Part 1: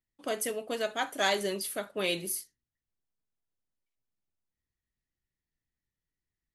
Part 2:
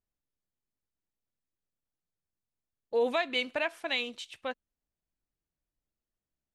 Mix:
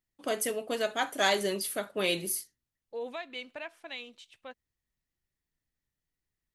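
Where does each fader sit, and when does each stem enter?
+1.5, -10.0 dB; 0.00, 0.00 s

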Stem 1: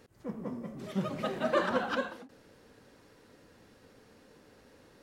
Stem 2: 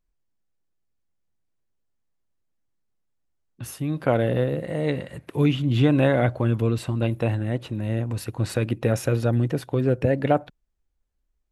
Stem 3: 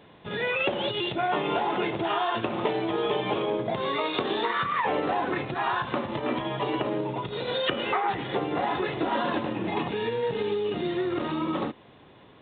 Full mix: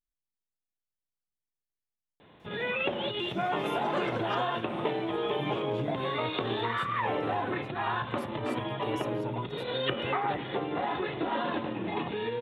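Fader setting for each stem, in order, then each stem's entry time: -6.5, -18.0, -4.0 dB; 2.40, 0.00, 2.20 s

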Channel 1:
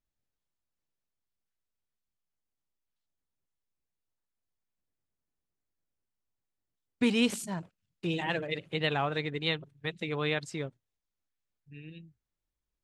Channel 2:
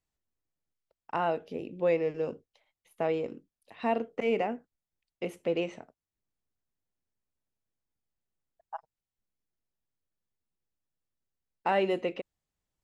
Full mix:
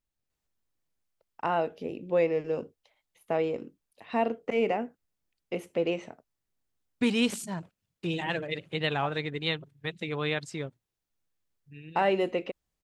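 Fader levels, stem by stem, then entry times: +0.5, +1.5 dB; 0.00, 0.30 s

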